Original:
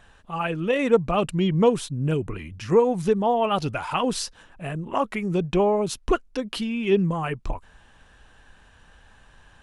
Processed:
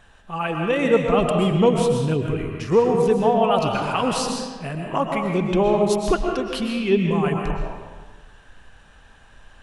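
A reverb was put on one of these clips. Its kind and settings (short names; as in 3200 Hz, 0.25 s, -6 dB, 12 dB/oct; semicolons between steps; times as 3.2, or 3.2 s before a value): digital reverb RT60 1.4 s, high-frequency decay 0.7×, pre-delay 85 ms, DRR 1.5 dB; gain +1 dB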